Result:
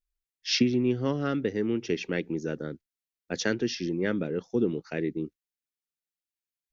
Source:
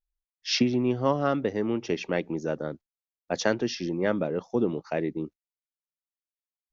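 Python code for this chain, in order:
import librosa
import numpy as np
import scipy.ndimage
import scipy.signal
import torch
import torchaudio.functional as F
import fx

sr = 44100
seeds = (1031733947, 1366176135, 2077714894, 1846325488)

y = fx.band_shelf(x, sr, hz=820.0, db=-10.5, octaves=1.3)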